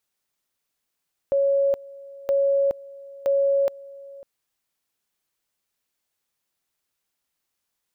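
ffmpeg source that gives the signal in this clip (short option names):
-f lavfi -i "aevalsrc='pow(10,(-17-21.5*gte(mod(t,0.97),0.42))/20)*sin(2*PI*555*t)':d=2.91:s=44100"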